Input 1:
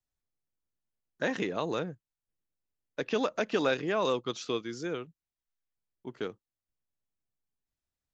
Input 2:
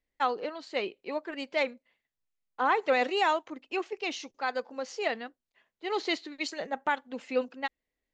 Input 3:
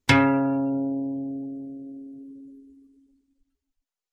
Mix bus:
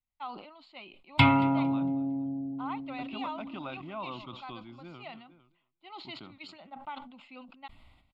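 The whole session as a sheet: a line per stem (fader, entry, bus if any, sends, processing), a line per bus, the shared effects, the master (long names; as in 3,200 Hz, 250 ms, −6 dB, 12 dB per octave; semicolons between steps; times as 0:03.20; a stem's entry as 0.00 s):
−4.5 dB, 0.00 s, no send, echo send −20.5 dB, high-shelf EQ 3,100 Hz −12 dB
−10.5 dB, 0.00 s, no send, no echo send, no processing
0.0 dB, 1.10 s, no send, echo send −23 dB, no processing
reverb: not used
echo: repeating echo 227 ms, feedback 28%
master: low-pass filter 5,300 Hz 12 dB per octave; phaser with its sweep stopped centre 1,700 Hz, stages 6; level that may fall only so fast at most 66 dB per second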